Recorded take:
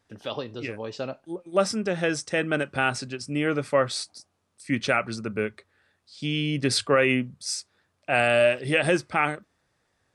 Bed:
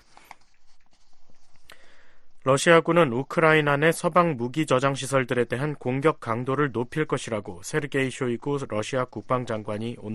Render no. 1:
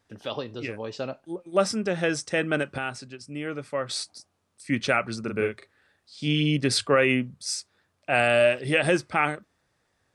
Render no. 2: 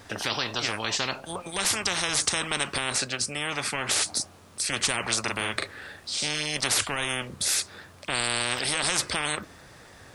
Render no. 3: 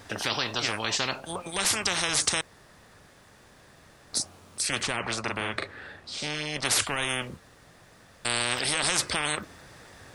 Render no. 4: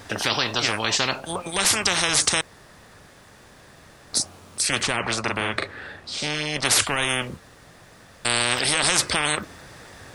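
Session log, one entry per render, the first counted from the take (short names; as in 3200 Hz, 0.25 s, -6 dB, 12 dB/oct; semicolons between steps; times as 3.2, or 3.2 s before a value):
2.78–3.89 gain -7.5 dB; 5.2–6.57 doubler 40 ms -4 dB
in parallel at -2 dB: limiter -19.5 dBFS, peak gain reduction 10.5 dB; on the sum: spectral compressor 10:1
2.41–4.13 room tone; 4.83–6.65 LPF 2500 Hz 6 dB/oct; 7.37–8.25 room tone
gain +5.5 dB; limiter -3 dBFS, peak gain reduction 1.5 dB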